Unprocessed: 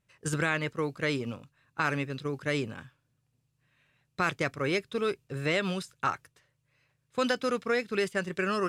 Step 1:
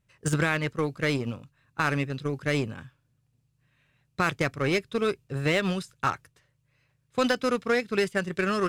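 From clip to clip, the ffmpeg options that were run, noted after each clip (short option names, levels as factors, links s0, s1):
-filter_complex "[0:a]lowshelf=f=170:g=7.5,asplit=2[s0][s1];[s1]acrusher=bits=3:mix=0:aa=0.5,volume=0.335[s2];[s0][s2]amix=inputs=2:normalize=0"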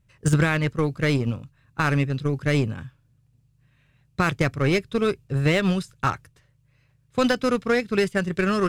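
-af "lowshelf=f=170:g=10,volume=1.26"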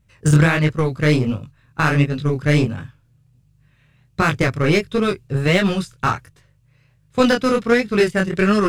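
-af "flanger=delay=19:depth=7.9:speed=1.4,volume=2.51"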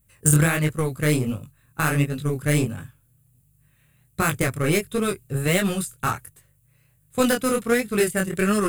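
-af "bandreject=f=960:w=18,aexciter=amount=12.4:drive=1.5:freq=7700,volume=0.562"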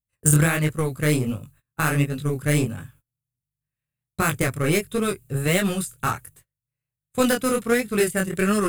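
-af "agate=range=0.0447:threshold=0.00282:ratio=16:detection=peak"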